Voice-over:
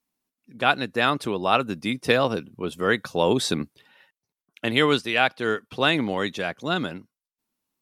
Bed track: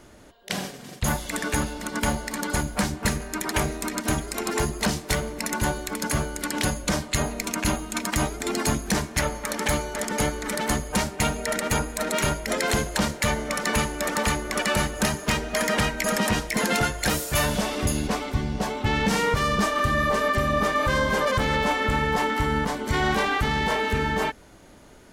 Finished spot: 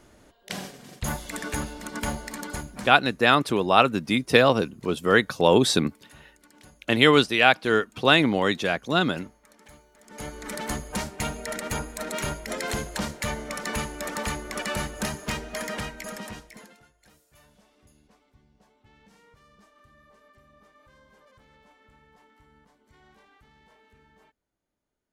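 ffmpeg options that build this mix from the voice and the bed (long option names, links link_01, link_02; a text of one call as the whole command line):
ffmpeg -i stem1.wav -i stem2.wav -filter_complex "[0:a]adelay=2250,volume=3dB[link_01];[1:a]volume=16.5dB,afade=type=out:start_time=2.3:duration=0.72:silence=0.0749894,afade=type=in:start_time=10.04:duration=0.47:silence=0.0841395,afade=type=out:start_time=15.28:duration=1.48:silence=0.0354813[link_02];[link_01][link_02]amix=inputs=2:normalize=0" out.wav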